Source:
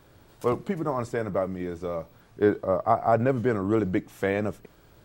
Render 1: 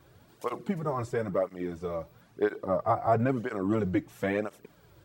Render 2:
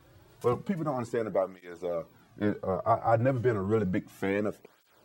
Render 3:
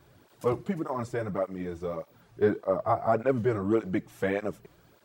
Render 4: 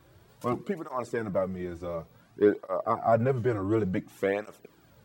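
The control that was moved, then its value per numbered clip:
tape flanging out of phase, nulls at: 1, 0.31, 1.7, 0.56 Hz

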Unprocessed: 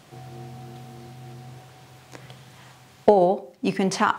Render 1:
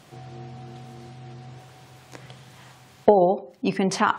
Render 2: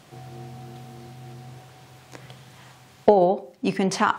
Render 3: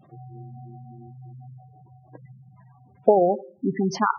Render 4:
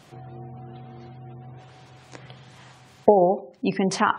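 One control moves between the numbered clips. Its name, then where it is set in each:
spectral gate, under each frame's peak: -40, -55, -10, -30 dB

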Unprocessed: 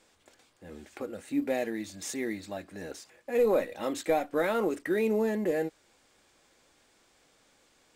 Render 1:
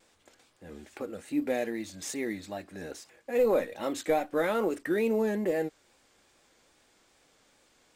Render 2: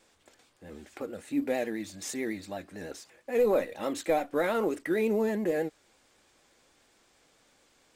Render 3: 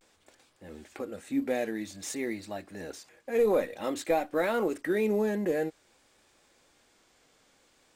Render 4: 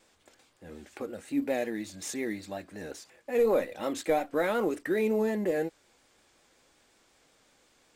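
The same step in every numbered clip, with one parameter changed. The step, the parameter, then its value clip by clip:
vibrato, rate: 2.4, 9.1, 0.52, 5.5 Hz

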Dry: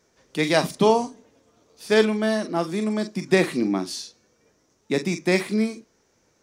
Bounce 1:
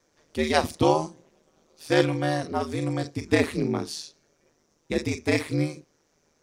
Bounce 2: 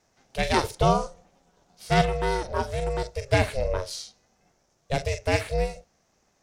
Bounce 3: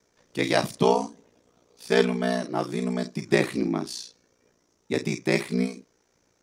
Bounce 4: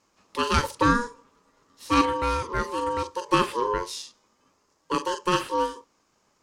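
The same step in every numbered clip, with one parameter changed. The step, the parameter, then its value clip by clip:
ring modulator, frequency: 77, 270, 30, 720 Hz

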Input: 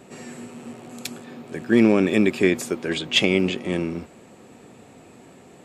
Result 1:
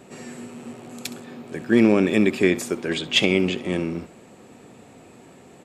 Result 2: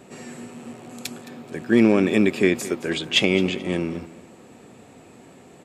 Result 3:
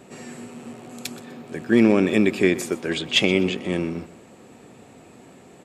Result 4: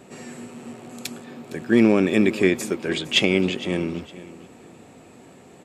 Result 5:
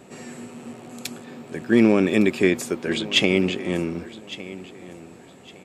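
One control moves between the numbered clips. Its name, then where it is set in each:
feedback echo, time: 66, 216, 125, 460, 1159 ms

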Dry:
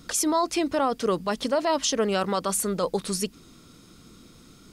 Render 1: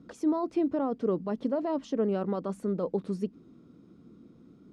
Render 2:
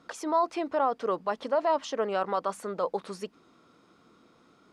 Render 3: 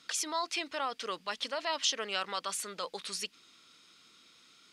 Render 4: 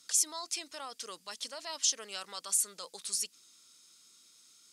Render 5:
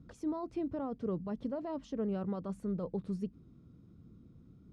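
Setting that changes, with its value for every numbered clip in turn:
band-pass, frequency: 260, 840, 2900, 7400, 100 Hz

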